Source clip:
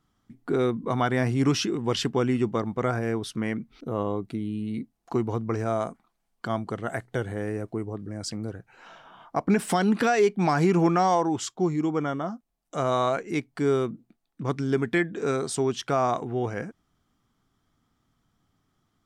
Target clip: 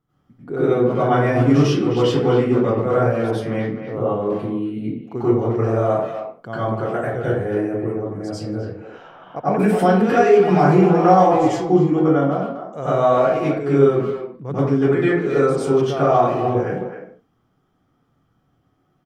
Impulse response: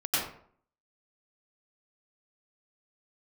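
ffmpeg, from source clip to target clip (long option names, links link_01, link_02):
-filter_complex "[0:a]equalizer=frequency=125:width_type=o:width=1:gain=7,equalizer=frequency=500:width_type=o:width=1:gain=9,equalizer=frequency=4000:width_type=o:width=1:gain=-4,equalizer=frequency=8000:width_type=o:width=1:gain=-6,asplit=2[link_01][link_02];[link_02]adelay=260,highpass=300,lowpass=3400,asoftclip=type=hard:threshold=-16dB,volume=-8dB[link_03];[link_01][link_03]amix=inputs=2:normalize=0[link_04];[1:a]atrim=start_sample=2205,afade=type=out:start_time=0.34:duration=0.01,atrim=end_sample=15435[link_05];[link_04][link_05]afir=irnorm=-1:irlink=0,volume=-6dB"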